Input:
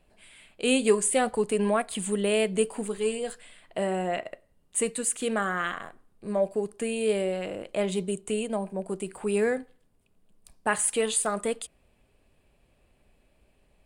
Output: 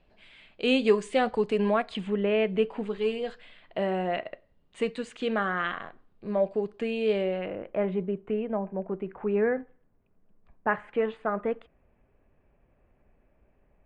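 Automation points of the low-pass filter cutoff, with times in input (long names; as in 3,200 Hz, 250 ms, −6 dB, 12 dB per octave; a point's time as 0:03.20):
low-pass filter 24 dB per octave
0:01.91 4,800 Hz
0:02.22 2,400 Hz
0:02.98 4,200 Hz
0:07.15 4,200 Hz
0:07.69 2,000 Hz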